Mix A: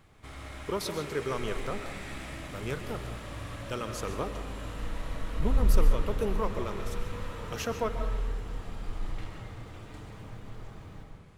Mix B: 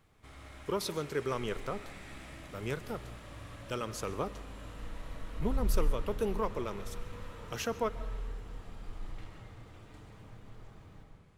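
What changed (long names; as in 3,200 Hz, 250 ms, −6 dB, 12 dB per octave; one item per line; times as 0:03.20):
speech: send −10.0 dB
background −7.5 dB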